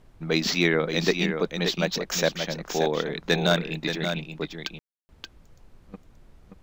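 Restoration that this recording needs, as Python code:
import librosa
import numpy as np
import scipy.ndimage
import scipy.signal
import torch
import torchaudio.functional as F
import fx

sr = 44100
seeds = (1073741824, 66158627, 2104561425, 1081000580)

y = fx.fix_ambience(x, sr, seeds[0], print_start_s=5.97, print_end_s=6.47, start_s=4.79, end_s=5.09)
y = fx.noise_reduce(y, sr, print_start_s=5.1, print_end_s=5.6, reduce_db=17.0)
y = fx.fix_echo_inverse(y, sr, delay_ms=578, level_db=-7.0)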